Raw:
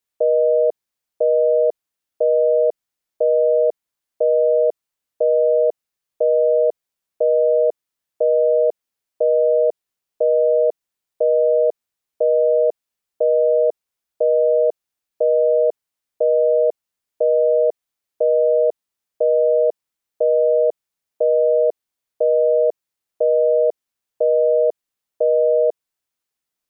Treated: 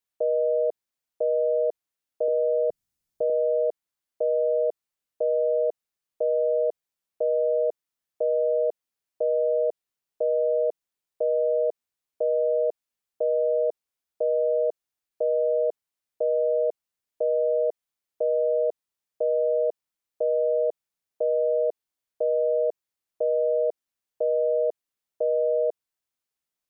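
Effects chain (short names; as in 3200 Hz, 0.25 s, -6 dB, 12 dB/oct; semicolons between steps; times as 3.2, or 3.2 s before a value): 2.28–3.3 tone controls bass +15 dB, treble +5 dB; limiter -12 dBFS, peak gain reduction 3.5 dB; gain -5 dB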